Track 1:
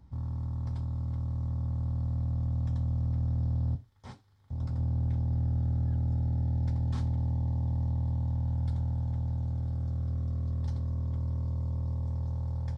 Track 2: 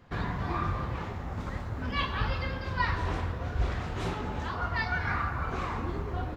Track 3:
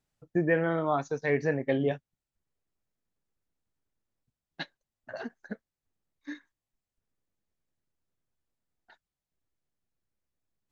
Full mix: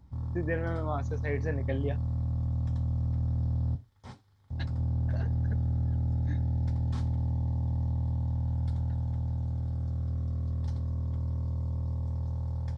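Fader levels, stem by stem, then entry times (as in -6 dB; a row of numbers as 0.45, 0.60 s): 0.0 dB, off, -7.0 dB; 0.00 s, off, 0.00 s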